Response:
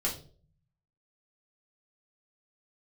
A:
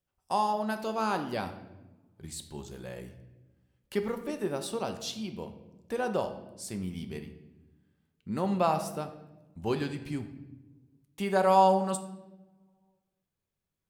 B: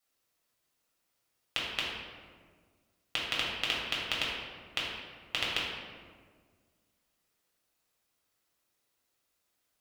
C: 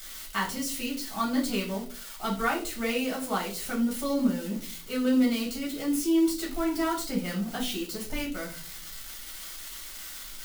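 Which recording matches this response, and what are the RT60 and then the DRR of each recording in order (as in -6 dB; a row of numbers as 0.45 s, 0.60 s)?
C; 1.1 s, 1.7 s, 0.45 s; 6.0 dB, -5.5 dB, -4.0 dB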